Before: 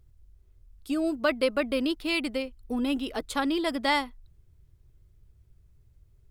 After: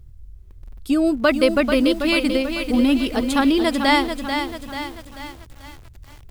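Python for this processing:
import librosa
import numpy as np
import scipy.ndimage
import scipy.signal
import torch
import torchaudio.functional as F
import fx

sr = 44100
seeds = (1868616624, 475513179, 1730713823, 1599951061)

y = fx.bass_treble(x, sr, bass_db=7, treble_db=0)
y = fx.echo_crushed(y, sr, ms=439, feedback_pct=55, bits=8, wet_db=-7)
y = y * librosa.db_to_amplitude(7.5)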